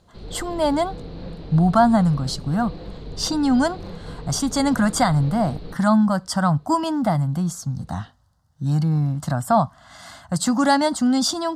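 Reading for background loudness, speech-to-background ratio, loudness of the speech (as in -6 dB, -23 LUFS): -37.5 LUFS, 16.5 dB, -21.0 LUFS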